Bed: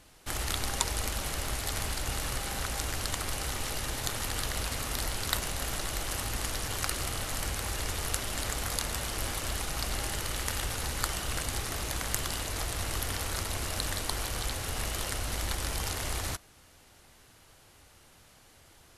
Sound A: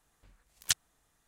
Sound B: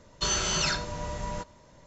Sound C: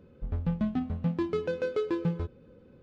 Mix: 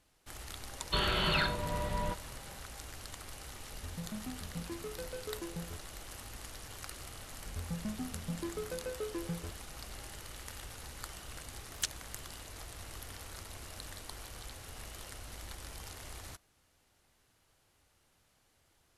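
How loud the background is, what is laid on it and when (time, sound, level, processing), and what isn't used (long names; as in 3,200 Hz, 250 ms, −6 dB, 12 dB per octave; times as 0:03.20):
bed −13.5 dB
0:00.71: mix in B −0.5 dB + Butterworth low-pass 4,200 Hz 72 dB per octave
0:03.51: mix in C −13.5 dB
0:07.24: mix in C −10 dB
0:11.13: mix in A −6.5 dB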